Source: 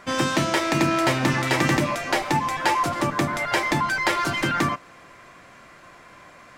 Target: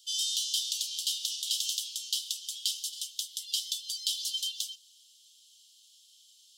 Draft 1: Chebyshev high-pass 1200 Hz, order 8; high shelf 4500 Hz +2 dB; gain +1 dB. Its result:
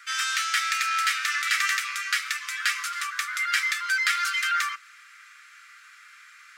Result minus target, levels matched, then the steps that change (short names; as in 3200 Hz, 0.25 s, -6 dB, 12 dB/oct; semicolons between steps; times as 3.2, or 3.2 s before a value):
4000 Hz band -6.0 dB
change: Chebyshev high-pass 3000 Hz, order 8